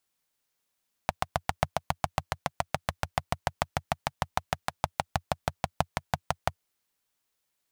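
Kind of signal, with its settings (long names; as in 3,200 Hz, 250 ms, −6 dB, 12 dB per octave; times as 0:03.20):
pulse-train model of a single-cylinder engine, changing speed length 5.51 s, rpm 900, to 700, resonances 88/140/720 Hz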